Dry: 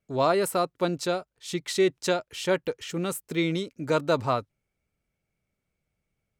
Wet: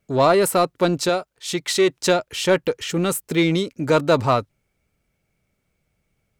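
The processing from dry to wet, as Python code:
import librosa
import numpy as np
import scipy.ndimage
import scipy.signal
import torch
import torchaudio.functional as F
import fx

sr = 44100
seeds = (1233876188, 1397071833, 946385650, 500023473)

p1 = 10.0 ** (-27.0 / 20.0) * np.tanh(x / 10.0 ** (-27.0 / 20.0))
p2 = x + F.gain(torch.from_numpy(p1), -3.5).numpy()
p3 = fx.low_shelf(p2, sr, hz=250.0, db=-7.0, at=(1.09, 2.0))
y = F.gain(torch.from_numpy(p3), 5.0).numpy()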